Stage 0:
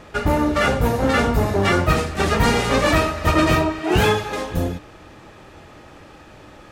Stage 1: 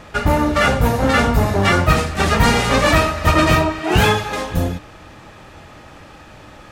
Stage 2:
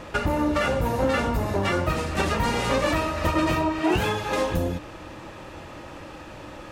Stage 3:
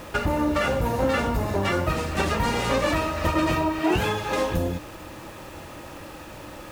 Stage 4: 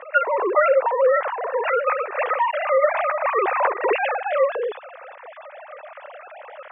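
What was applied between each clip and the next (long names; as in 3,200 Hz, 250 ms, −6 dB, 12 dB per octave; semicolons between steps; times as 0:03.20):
parametric band 380 Hz −5 dB 0.89 octaves; level +4 dB
downward compressor, threshold −21 dBFS, peak gain reduction 12 dB; hollow resonant body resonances 330/530/960/2,700 Hz, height 7 dB, ringing for 35 ms; level −1.5 dB
bit reduction 8 bits
three sine waves on the formant tracks; band-pass filter 440–2,200 Hz; level +4.5 dB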